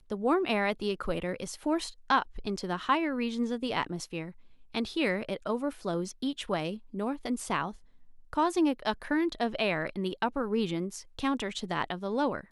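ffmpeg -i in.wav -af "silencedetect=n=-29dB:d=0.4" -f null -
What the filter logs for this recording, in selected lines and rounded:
silence_start: 4.22
silence_end: 4.75 | silence_duration: 0.53
silence_start: 7.68
silence_end: 8.33 | silence_duration: 0.65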